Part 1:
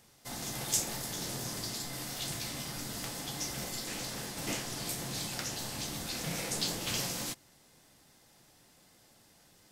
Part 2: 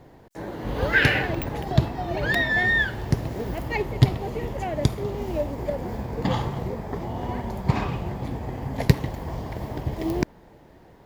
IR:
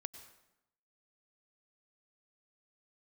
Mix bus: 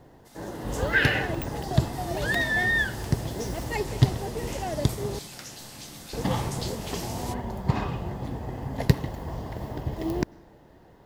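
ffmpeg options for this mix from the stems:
-filter_complex "[0:a]volume=0.631,afade=t=in:st=1.38:d=0.56:silence=0.354813[s0];[1:a]bandreject=f=2300:w=8.9,volume=0.631,asplit=3[s1][s2][s3];[s1]atrim=end=5.19,asetpts=PTS-STARTPTS,afade=t=out:st=5.186:d=0.004:c=hsin[s4];[s2]atrim=start=5.19:end=6.13,asetpts=PTS-STARTPTS,volume=0[s5];[s3]atrim=start=6.13,asetpts=PTS-STARTPTS,afade=t=in:d=0.004:c=hsin[s6];[s4][s5][s6]concat=n=3:v=0:a=1,asplit=2[s7][s8];[s8]volume=0.282[s9];[2:a]atrim=start_sample=2205[s10];[s9][s10]afir=irnorm=-1:irlink=0[s11];[s0][s7][s11]amix=inputs=3:normalize=0"

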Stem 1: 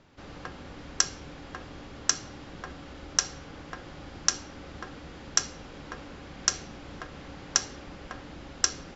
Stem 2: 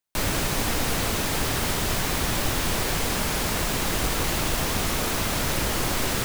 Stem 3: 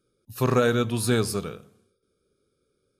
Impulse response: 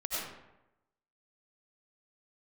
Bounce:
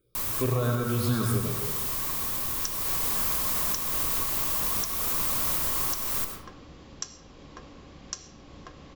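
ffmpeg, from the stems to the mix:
-filter_complex "[0:a]equalizer=f=1300:w=1:g=-9.5,adelay=1650,volume=0.668,asplit=2[s0][s1];[s1]volume=0.1[s2];[1:a]aemphasis=mode=production:type=50fm,volume=0.841,afade=t=in:st=2.61:d=0.47:silence=0.223872,asplit=2[s3][s4];[s4]volume=0.119[s5];[2:a]lowshelf=f=190:g=11.5,asplit=2[s6][s7];[s7]afreqshift=2.2[s8];[s6][s8]amix=inputs=2:normalize=1,volume=0.708,asplit=2[s9][s10];[s10]volume=0.501[s11];[s3][s9]amix=inputs=2:normalize=0,acompressor=threshold=0.0562:ratio=6,volume=1[s12];[3:a]atrim=start_sample=2205[s13];[s2][s5][s11]amix=inputs=3:normalize=0[s14];[s14][s13]afir=irnorm=-1:irlink=0[s15];[s0][s12][s15]amix=inputs=3:normalize=0,equalizer=f=1100:w=6.4:g=12.5,alimiter=limit=0.158:level=0:latency=1:release=403"

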